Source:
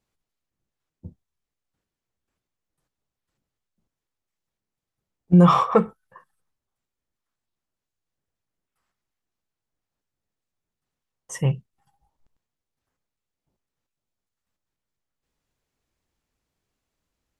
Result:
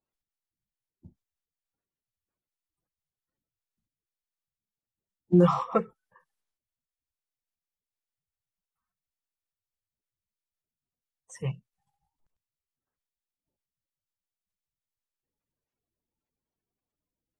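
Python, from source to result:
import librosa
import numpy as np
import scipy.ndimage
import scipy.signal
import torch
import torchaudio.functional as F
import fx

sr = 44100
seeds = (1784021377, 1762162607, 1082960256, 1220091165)

y = fx.spec_quant(x, sr, step_db=30)
y = fx.upward_expand(y, sr, threshold_db=-23.0, expansion=1.5)
y = y * librosa.db_to_amplitude(-5.0)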